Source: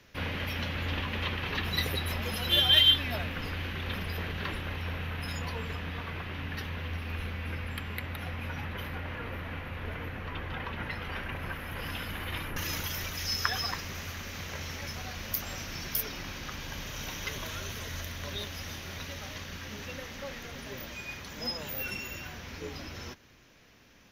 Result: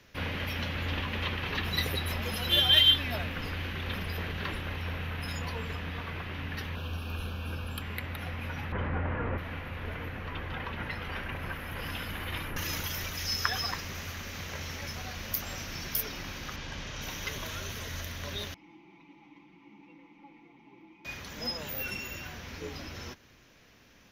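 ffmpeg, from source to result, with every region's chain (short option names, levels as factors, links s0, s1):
-filter_complex "[0:a]asettb=1/sr,asplit=3[s0][s1][s2];[s0]atrim=end=6.754[s3];[s1]atrim=start=6.75:end=7.82,asetpts=PTS-STARTPTS,afade=t=in:d=0.004:c=qsin,afade=t=out:st=1.066:d=0.004:c=qsin,asuperstop=centerf=2000:order=4:qfactor=2.5,highshelf=f=4900:g=4.5[s4];[s2]atrim=start=7.816[s5];[s3][s4]acrossfade=d=0.004:c1=hsin:c2=qsin[s6];[s6][s5]acrossfade=d=0.004:c1=qsin:c2=hsin,asettb=1/sr,asplit=3[s7][s8][s9];[s7]atrim=end=8.724[s10];[s8]atrim=start=8.72:end=9.38,asetpts=PTS-STARTPTS,afade=t=in:d=0.004:c=qsin,afade=t=out:st=0.656:d=0.004:c=qsin,lowpass=1500,acontrast=73[s11];[s9]atrim=start=9.376[s12];[s10][s11]acrossfade=d=0.004:c1=hsin:c2=qsin[s13];[s13][s12]acrossfade=d=0.004:c1=qsin:c2=hsin,asettb=1/sr,asplit=3[s14][s15][s16];[s14]atrim=end=16.564[s17];[s15]atrim=start=16.56:end=17.02,asetpts=PTS-STARTPTS,afade=t=in:d=0.004:c=qsin,afade=t=out:st=0.456:d=0.004:c=qsin,lowpass=6000,asoftclip=type=hard:threshold=0.0299[s18];[s16]atrim=start=17.016[s19];[s17][s18]acrossfade=d=0.004:c1=hsin:c2=qsin[s20];[s20][s19]acrossfade=d=0.004:c1=qsin:c2=hsin,asettb=1/sr,asplit=3[s21][s22][s23];[s21]atrim=end=18.544[s24];[s22]atrim=start=18.54:end=21.05,asetpts=PTS-STARTPTS,afade=t=in:d=0.004:c=qsin,afade=t=out:st=2.506:d=0.004:c=qsin,asplit=3[s25][s26][s27];[s25]bandpass=f=300:t=q:w=8,volume=1[s28];[s26]bandpass=f=870:t=q:w=8,volume=0.501[s29];[s27]bandpass=f=2240:t=q:w=8,volume=0.355[s30];[s28][s29][s30]amix=inputs=3:normalize=0,highshelf=f=2400:g=-10.5,aecho=1:1:5.9:0.95,atrim=end_sample=110691[s31];[s23]atrim=start=21.046[s32];[s24][s31]acrossfade=d=0.004:c1=hsin:c2=qsin[s33];[s33][s32]acrossfade=d=0.004:c1=qsin:c2=hsin"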